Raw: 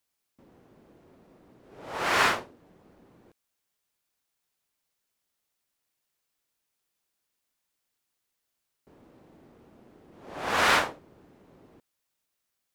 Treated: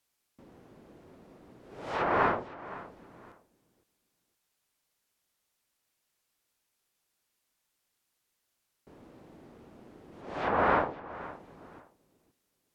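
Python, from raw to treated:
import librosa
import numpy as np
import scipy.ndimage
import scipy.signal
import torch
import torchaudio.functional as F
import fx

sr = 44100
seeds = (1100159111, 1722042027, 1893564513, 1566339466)

y = fx.env_lowpass_down(x, sr, base_hz=980.0, full_db=-26.5)
y = fx.high_shelf(y, sr, hz=5500.0, db=-8.0, at=(10.21, 10.8))
y = fx.echo_feedback(y, sr, ms=515, feedback_pct=23, wet_db=-17)
y = y * 10.0 ** (2.5 / 20.0)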